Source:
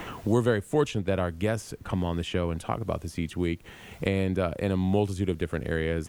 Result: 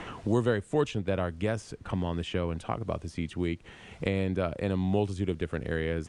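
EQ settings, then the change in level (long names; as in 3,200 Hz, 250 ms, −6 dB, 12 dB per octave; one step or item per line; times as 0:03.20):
Chebyshev low-pass filter 9,500 Hz, order 4
high-shelf EQ 6,900 Hz −6 dB
−1.5 dB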